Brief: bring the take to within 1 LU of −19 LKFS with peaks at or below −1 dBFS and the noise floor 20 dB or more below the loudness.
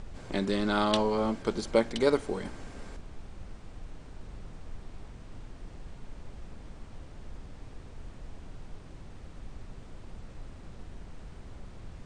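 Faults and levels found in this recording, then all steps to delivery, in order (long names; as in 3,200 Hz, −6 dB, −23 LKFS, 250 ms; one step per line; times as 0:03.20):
background noise floor −48 dBFS; target noise floor −49 dBFS; integrated loudness −29.0 LKFS; sample peak −8.5 dBFS; target loudness −19.0 LKFS
→ noise reduction from a noise print 6 dB
level +10 dB
brickwall limiter −1 dBFS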